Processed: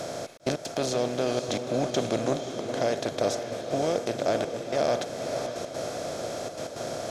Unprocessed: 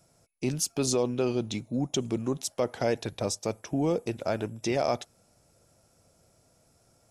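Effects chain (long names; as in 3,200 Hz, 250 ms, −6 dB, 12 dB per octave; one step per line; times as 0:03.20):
compressor on every frequency bin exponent 0.4
0:01.90–0:02.77: downward expander −24 dBFS
graphic EQ with 15 bands 630 Hz +9 dB, 1,600 Hz +6 dB, 4,000 Hz +5 dB, 10,000 Hz −7 dB
speech leveller within 4 dB 0.5 s
gate pattern "xxxx.x.xxxx" 162 BPM −60 dB
on a send: feedback delay with all-pass diffusion 539 ms, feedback 46%, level −7 dB
on the sum: level −6.5 dB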